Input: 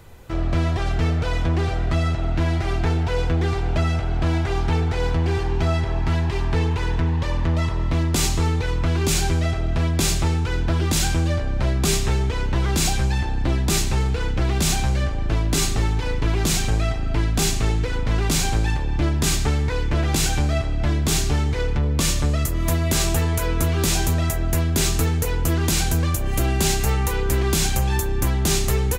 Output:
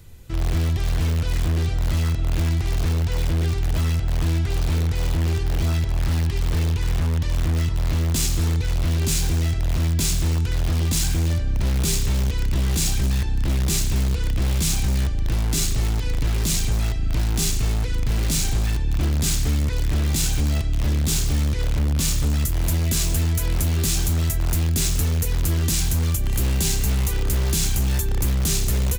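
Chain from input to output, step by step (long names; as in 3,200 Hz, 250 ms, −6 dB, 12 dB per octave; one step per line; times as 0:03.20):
parametric band 850 Hz −14 dB 2.8 octaves
in parallel at −10.5 dB: wrap-around overflow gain 17.5 dB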